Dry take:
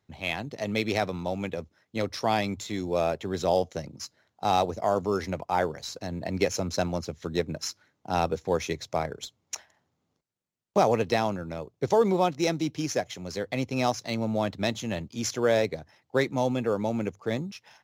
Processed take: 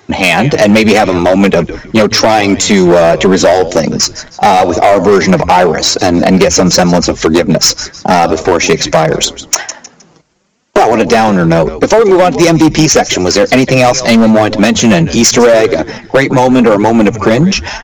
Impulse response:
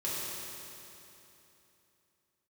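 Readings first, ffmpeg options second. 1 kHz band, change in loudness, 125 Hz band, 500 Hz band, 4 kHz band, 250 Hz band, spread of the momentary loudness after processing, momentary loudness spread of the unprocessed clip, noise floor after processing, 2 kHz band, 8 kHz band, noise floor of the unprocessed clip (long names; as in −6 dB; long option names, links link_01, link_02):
+19.0 dB, +20.5 dB, +20.0 dB, +19.5 dB, +22.5 dB, +22.5 dB, 5 LU, 11 LU, −42 dBFS, +21.5 dB, +25.5 dB, −78 dBFS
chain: -filter_complex "[0:a]acompressor=threshold=-29dB:ratio=20,aresample=16000,aresample=44100,equalizer=frequency=3800:width_type=o:width=0.5:gain=-5,flanger=delay=2.4:depth=4.3:regen=5:speed=0.83:shape=triangular,highpass=150,asplit=4[link_01][link_02][link_03][link_04];[link_02]adelay=156,afreqshift=-110,volume=-19dB[link_05];[link_03]adelay=312,afreqshift=-220,volume=-28.9dB[link_06];[link_04]adelay=468,afreqshift=-330,volume=-38.8dB[link_07];[link_01][link_05][link_06][link_07]amix=inputs=4:normalize=0,acontrast=36,asoftclip=type=hard:threshold=-29.5dB,alimiter=level_in=33dB:limit=-1dB:release=50:level=0:latency=1,volume=-1dB"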